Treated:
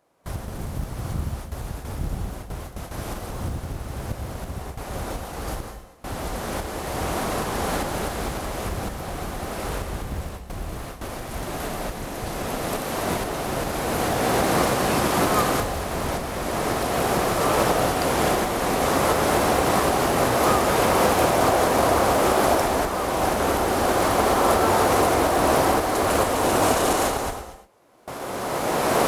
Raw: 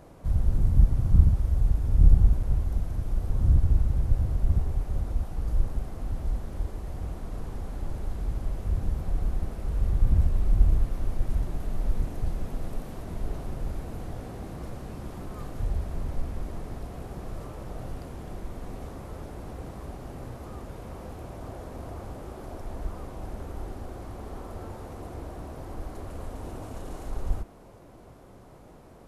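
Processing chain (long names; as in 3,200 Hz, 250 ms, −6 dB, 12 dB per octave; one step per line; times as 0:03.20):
camcorder AGC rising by 16 dB per second
high-pass filter 840 Hz 6 dB per octave
noise gate with hold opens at −34 dBFS
in parallel at −7 dB: floating-point word with a short mantissa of 2 bits
on the sum: reverb whose tail is shaped and stops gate 260 ms rising, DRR 10 dB
level +7.5 dB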